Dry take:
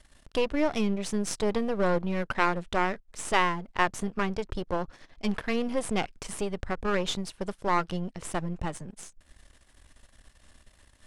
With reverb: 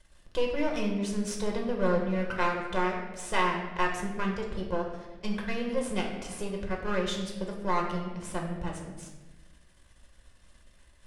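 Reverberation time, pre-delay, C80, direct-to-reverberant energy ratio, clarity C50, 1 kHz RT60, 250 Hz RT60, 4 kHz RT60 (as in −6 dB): 1.2 s, 5 ms, 7.0 dB, −0.5 dB, 4.5 dB, 1.0 s, 1.5 s, 0.85 s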